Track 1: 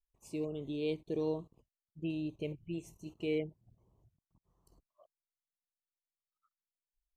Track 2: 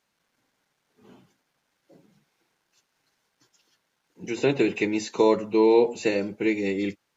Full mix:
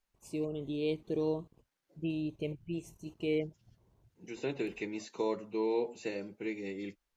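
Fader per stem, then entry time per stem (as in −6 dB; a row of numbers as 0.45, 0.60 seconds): +2.0, −13.5 decibels; 0.00, 0.00 seconds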